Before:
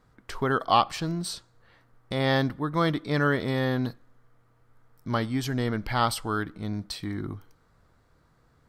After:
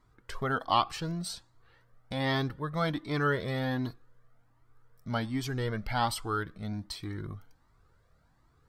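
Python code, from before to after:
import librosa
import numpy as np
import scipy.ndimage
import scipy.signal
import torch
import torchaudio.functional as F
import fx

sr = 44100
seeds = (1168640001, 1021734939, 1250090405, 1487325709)

y = fx.comb_cascade(x, sr, direction='rising', hz=1.3)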